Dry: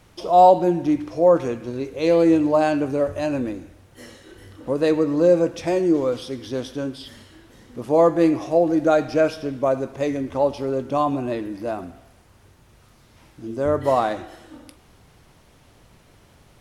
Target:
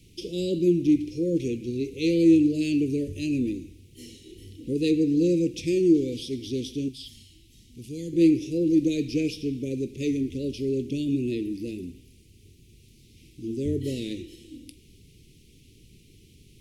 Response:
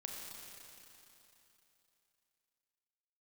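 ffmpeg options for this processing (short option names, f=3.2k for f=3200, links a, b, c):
-filter_complex "[0:a]asettb=1/sr,asplit=3[a][b][c];[a]atrim=end=6.884[d];[b]atrim=start=6.88:end=8.13,asetpts=PTS-STARTPTS,afade=t=in:d=0.004:c=qsin,afade=t=out:st=1.246:d=0.004:c=qsin,equalizer=f=490:t=o:w=2.9:g=-14[e];[c]atrim=start=8.126[f];[d][e]acrossfade=d=0.004:c1=hsin:c2=qsin[g];[g][f]acrossfade=d=0.004:c1=qsin:c2=hsin,asuperstop=centerf=1000:order=12:qfactor=0.52"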